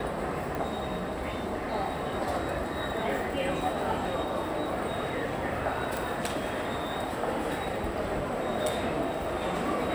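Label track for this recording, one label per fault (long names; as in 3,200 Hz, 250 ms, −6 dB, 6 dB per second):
0.550000	0.550000	click
5.970000	5.970000	click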